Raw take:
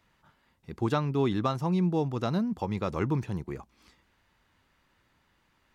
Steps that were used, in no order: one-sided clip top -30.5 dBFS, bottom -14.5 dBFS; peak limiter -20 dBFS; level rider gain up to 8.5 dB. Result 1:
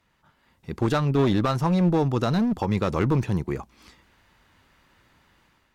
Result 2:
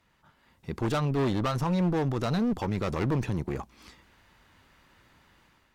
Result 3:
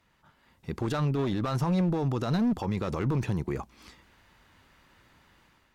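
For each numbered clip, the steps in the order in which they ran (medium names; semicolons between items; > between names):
one-sided clip > peak limiter > level rider; level rider > one-sided clip > peak limiter; one-sided clip > level rider > peak limiter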